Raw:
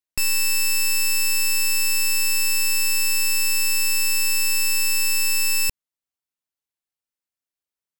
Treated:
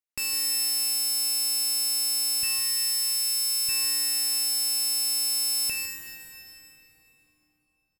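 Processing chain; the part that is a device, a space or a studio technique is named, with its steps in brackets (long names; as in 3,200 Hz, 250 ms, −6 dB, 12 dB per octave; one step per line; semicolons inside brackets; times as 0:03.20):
0:02.43–0:03.69: high-pass filter 940 Hz 24 dB per octave
PA in a hall (high-pass filter 150 Hz 6 dB per octave; parametric band 2,200 Hz +3.5 dB 0.23 octaves; single-tap delay 157 ms −10.5 dB; convolution reverb RT60 3.7 s, pre-delay 14 ms, DRR 2 dB)
level −6 dB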